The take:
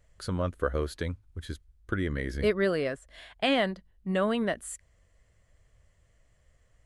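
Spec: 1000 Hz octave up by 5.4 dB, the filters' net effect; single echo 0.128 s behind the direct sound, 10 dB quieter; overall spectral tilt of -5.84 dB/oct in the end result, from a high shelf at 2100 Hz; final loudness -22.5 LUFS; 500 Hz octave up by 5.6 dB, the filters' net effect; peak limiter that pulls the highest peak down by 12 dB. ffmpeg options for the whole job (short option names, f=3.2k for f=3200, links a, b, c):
-af "equalizer=f=500:t=o:g=5.5,equalizer=f=1k:t=o:g=6.5,highshelf=f=2.1k:g=-4.5,alimiter=limit=-21.5dB:level=0:latency=1,aecho=1:1:128:0.316,volume=10dB"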